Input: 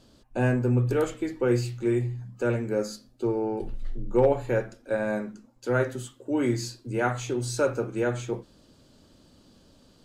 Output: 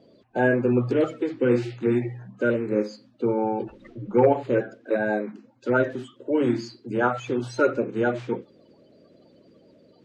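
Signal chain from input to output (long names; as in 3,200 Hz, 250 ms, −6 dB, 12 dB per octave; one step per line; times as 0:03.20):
spectral magnitudes quantised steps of 30 dB
band-pass filter 170–3,000 Hz
level +4.5 dB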